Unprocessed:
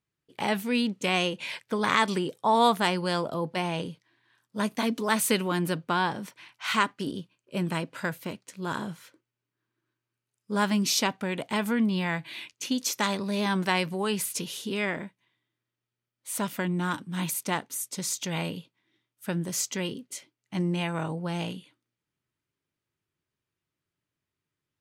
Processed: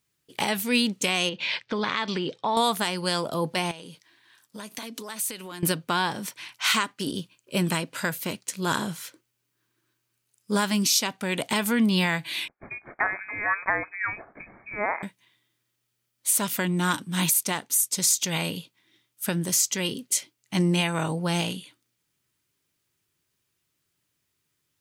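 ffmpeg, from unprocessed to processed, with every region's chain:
-filter_complex "[0:a]asettb=1/sr,asplit=3[s0][s1][s2];[s0]atrim=end=1.294[s3];[s1]atrim=start=1.29:end=2.57,asetpts=PTS-STARTPTS,afade=t=in:d=0.004:c=qsin,afade=t=out:st=1.276:d=0.004:c=qsin,lowpass=f=4600:w=0.5412,lowpass=f=4600:w=1.3066,acompressor=threshold=0.0316:ratio=3:attack=3.2:release=140:knee=1:detection=peak[s4];[s2]atrim=start=2.566[s5];[s3][s4]acrossfade=d=0.004:c1=hsin:c2=qsin[s6];[s6][s5]acrossfade=d=0.004:c1=qsin:c2=hsin,asettb=1/sr,asplit=3[s7][s8][s9];[s7]atrim=end=3.714[s10];[s8]atrim=start=3.71:end=5.63,asetpts=PTS-STARTPTS,afade=t=in:d=0.004:c=qsin,afade=t=out:st=1.916:d=0.004:c=qsin,equalizer=f=66:w=0.73:g=-13.5,acompressor=threshold=0.00794:ratio=6:attack=3.2:release=140:knee=1:detection=peak[s11];[s9]atrim=start=5.626[s12];[s10][s11]acrossfade=d=0.004:c1=hsin:c2=qsin[s13];[s13][s12]acrossfade=d=0.004:c1=qsin:c2=hsin,asettb=1/sr,asplit=3[s14][s15][s16];[s14]atrim=end=12.484[s17];[s15]atrim=start=12.48:end=15.03,asetpts=PTS-STARTPTS,afade=t=in:d=0.004:c=qsin,afade=t=out:st=2.546:d=0.004:c=qsin,highpass=850,lowpass=f=2300:t=q:w=0.5098,lowpass=f=2300:t=q:w=0.6013,lowpass=f=2300:t=q:w=0.9,lowpass=f=2300:t=q:w=2.563,afreqshift=-2700[s18];[s16]atrim=start=15.026[s19];[s17][s18]acrossfade=d=0.004:c1=hsin:c2=qsin[s20];[s20][s19]acrossfade=d=0.004:c1=qsin:c2=hsin,highshelf=f=3300:g=12,alimiter=limit=0.15:level=0:latency=1:release=455,volume=1.78"

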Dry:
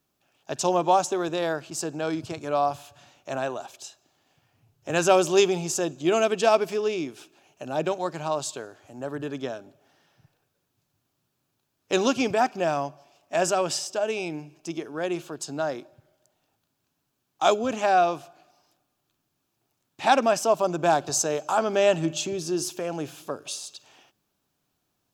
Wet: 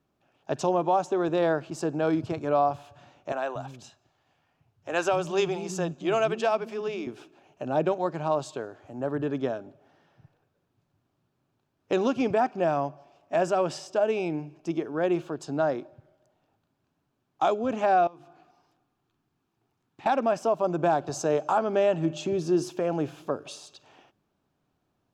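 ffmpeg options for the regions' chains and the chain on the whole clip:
-filter_complex "[0:a]asettb=1/sr,asplit=3[s0][s1][s2];[s0]atrim=end=3.324[s3];[s1]atrim=start=3.32:end=7.07,asetpts=PTS-STARTPTS,afade=t=in:d=0.004:c=qsin,afade=t=out:st=3.746:d=0.004:c=qsin,equalizer=f=370:t=o:w=2:g=-6.5,acrossover=split=250[s4][s5];[s4]adelay=230[s6];[s6][s5]amix=inputs=2:normalize=0,atrim=end_sample=165375[s7];[s2]atrim=start=7.066[s8];[s3][s7]acrossfade=d=0.004:c1=hsin:c2=qsin[s9];[s9][s8]acrossfade=d=0.004:c1=qsin:c2=hsin,asettb=1/sr,asplit=3[s10][s11][s12];[s10]atrim=end=18.074[s13];[s11]atrim=start=18.07:end=20.06,asetpts=PTS-STARTPTS,afade=t=in:d=0.004:c=qsin,afade=t=out:st=1.986:d=0.004:c=qsin,equalizer=f=590:w=5.7:g=-11,bandreject=f=50:t=h:w=6,bandreject=f=100:t=h:w=6,bandreject=f=150:t=h:w=6,bandreject=f=200:t=h:w=6,bandreject=f=250:t=h:w=6,bandreject=f=300:t=h:w=6,bandreject=f=350:t=h:w=6,acompressor=threshold=0.00355:ratio=3:attack=3.2:release=140:knee=1:detection=peak[s14];[s12]atrim=start=20.056[s15];[s13][s14]acrossfade=d=0.004:c1=hsin:c2=qsin[s16];[s16][s15]acrossfade=d=0.004:c1=qsin:c2=hsin,lowpass=f=1200:p=1,alimiter=limit=0.126:level=0:latency=1:release=499,volume=1.58"

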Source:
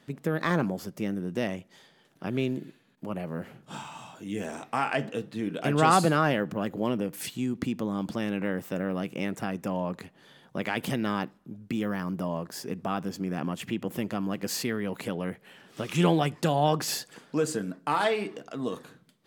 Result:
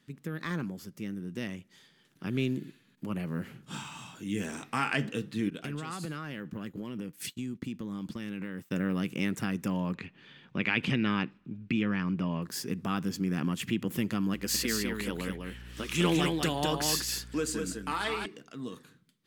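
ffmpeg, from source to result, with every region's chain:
-filter_complex "[0:a]asettb=1/sr,asplit=3[s0][s1][s2];[s0]atrim=end=5.504[s3];[s1]atrim=start=5.5:end=8.71,asetpts=PTS-STARTPTS,afade=t=in:d=0.004:c=qsin,afade=t=out:st=3.206:d=0.004:c=qsin,agate=range=0.0224:threshold=0.0251:ratio=3:release=100:detection=peak,acompressor=threshold=0.02:ratio=5:attack=3.2:release=140:knee=1:detection=peak[s4];[s2]atrim=start=8.706[s5];[s3][s4]acrossfade=d=0.004:c1=hsin:c2=qsin[s6];[s6][s5]acrossfade=d=0.004:c1=qsin:c2=hsin,asettb=1/sr,asplit=3[s7][s8][s9];[s7]atrim=end=9.944[s10];[s8]atrim=start=9.94:end=12.42,asetpts=PTS-STARTPTS,afade=t=in:d=0.004:c=qsin,afade=t=out:st=2.476:d=0.004:c=qsin,lowpass=3600,equalizer=f=2500:w=3.7:g=8.5[s11];[s9]atrim=start=12.416[s12];[s10][s11]acrossfade=d=0.004:c1=hsin:c2=qsin[s13];[s13][s12]acrossfade=d=0.004:c1=qsin:c2=hsin,asettb=1/sr,asplit=3[s14][s15][s16];[s14]atrim=end=14.344[s17];[s15]atrim=start=14.34:end=18.26,asetpts=PTS-STARTPTS,afade=t=in:d=0.004:c=qsin,afade=t=out:st=3.916:d=0.004:c=qsin,equalizer=f=130:w=1.7:g=-12.5,aeval=exprs='val(0)+0.00282*(sin(2*PI*60*n/s)+sin(2*PI*2*60*n/s)/2+sin(2*PI*3*60*n/s)/3+sin(2*PI*4*60*n/s)/4+sin(2*PI*5*60*n/s)/5)':c=same,aecho=1:1:201:0.631,atrim=end_sample=172872[s18];[s16]atrim=start=18.256[s19];[s17][s18]acrossfade=d=0.004:c1=hsin:c2=qsin[s20];[s20][s19]acrossfade=d=0.004:c1=qsin:c2=hsin,dynaudnorm=f=370:g=11:m=2.82,equalizer=f=670:t=o:w=1.2:g=-13,volume=0.531"

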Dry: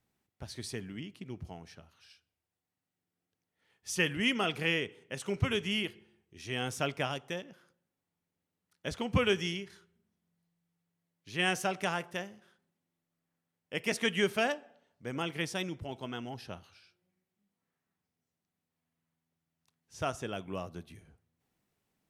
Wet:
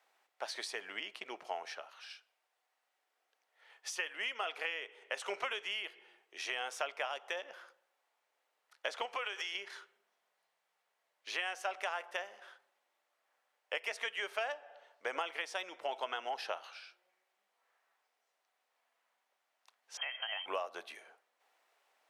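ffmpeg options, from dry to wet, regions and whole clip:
-filter_complex "[0:a]asettb=1/sr,asplit=3[s0][s1][s2];[s0]atrim=end=9.054[s3];[s1]atrim=start=9.05:end=9.55,asetpts=PTS-STARTPTS,afade=t=in:d=0.004:c=qsin,afade=t=out:st=0.496:d=0.004:c=qsin,highpass=f=550:p=1,acompressor=threshold=0.0141:ratio=6:attack=3.2:release=140:knee=1:detection=peak[s4];[s2]atrim=start=9.546[s5];[s3][s4]acrossfade=d=0.004:c1=hsin:c2=qsin[s6];[s6][s5]acrossfade=d=0.004:c1=qsin:c2=hsin,asettb=1/sr,asplit=3[s7][s8][s9];[s7]atrim=end=19.974[s10];[s8]atrim=start=19.97:end=20.46,asetpts=PTS-STARTPTS,afade=t=in:d=0.004:c=qsin,afade=t=out:st=0.486:d=0.004:c=qsin,equalizer=f=430:w=1.1:g=-13,acompressor=threshold=0.0112:ratio=4:attack=3.2:release=140:knee=1:detection=peak,lowpass=f=2800:t=q:w=0.5098,lowpass=f=2800:t=q:w=0.6013,lowpass=f=2800:t=q:w=0.9,lowpass=f=2800:t=q:w=2.563,afreqshift=-3300[s11];[s9]atrim=start=20.456[s12];[s10][s11]acrossfade=d=0.004:c1=hsin:c2=qsin[s13];[s13][s12]acrossfade=d=0.004:c1=qsin:c2=hsin,highpass=f=590:w=0.5412,highpass=f=590:w=1.3066,acompressor=threshold=0.00501:ratio=10,lowpass=f=2500:p=1,volume=4.73"

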